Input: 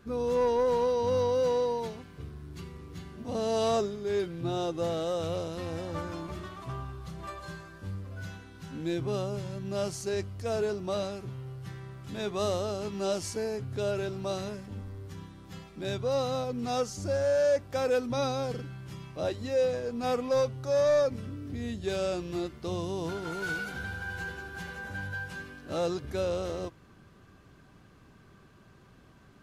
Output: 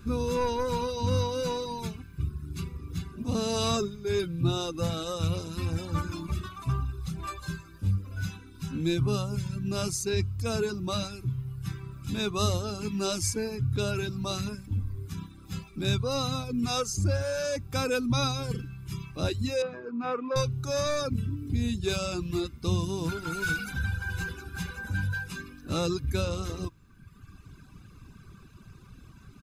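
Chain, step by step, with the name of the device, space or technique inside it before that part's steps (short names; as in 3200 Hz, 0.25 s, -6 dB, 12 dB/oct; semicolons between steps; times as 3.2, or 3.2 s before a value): smiley-face EQ (low shelf 120 Hz +7.5 dB; bell 730 Hz -4.5 dB 2.1 oct; high shelf 5600 Hz +5.5 dB); reverb removal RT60 1.3 s; 19.62–20.36 Chebyshev band-pass 290–1700 Hz, order 2; comb 0.8 ms, depth 48%; gain +5 dB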